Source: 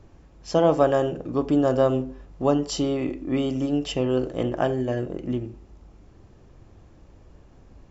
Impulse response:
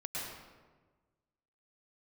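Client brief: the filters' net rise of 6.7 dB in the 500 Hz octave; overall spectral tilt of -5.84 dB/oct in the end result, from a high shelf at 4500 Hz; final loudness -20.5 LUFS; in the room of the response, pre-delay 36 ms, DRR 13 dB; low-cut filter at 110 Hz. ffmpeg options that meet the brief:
-filter_complex "[0:a]highpass=110,equalizer=f=500:t=o:g=8,highshelf=f=4.5k:g=7,asplit=2[a][b];[1:a]atrim=start_sample=2205,adelay=36[c];[b][c]afir=irnorm=-1:irlink=0,volume=-15.5dB[d];[a][d]amix=inputs=2:normalize=0,volume=-1.5dB"

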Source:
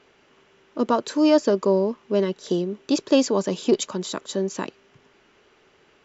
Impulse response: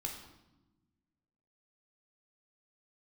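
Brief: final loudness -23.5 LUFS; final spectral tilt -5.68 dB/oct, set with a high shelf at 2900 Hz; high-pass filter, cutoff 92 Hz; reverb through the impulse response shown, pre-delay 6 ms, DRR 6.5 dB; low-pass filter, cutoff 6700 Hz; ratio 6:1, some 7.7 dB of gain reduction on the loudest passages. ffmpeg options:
-filter_complex "[0:a]highpass=92,lowpass=6.7k,highshelf=f=2.9k:g=-6.5,acompressor=threshold=-21dB:ratio=6,asplit=2[a][b];[1:a]atrim=start_sample=2205,adelay=6[c];[b][c]afir=irnorm=-1:irlink=0,volume=-6dB[d];[a][d]amix=inputs=2:normalize=0,volume=4.5dB"

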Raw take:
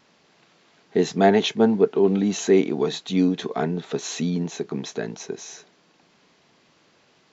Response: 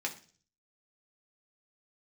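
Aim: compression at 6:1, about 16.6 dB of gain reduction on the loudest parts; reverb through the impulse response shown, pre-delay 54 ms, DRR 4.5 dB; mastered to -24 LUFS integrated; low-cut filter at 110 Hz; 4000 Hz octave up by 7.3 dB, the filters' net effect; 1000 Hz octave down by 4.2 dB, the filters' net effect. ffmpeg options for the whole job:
-filter_complex "[0:a]highpass=110,equalizer=f=1k:t=o:g=-8,equalizer=f=4k:t=o:g=9,acompressor=threshold=-32dB:ratio=6,asplit=2[a][b];[1:a]atrim=start_sample=2205,adelay=54[c];[b][c]afir=irnorm=-1:irlink=0,volume=-8dB[d];[a][d]amix=inputs=2:normalize=0,volume=10dB"

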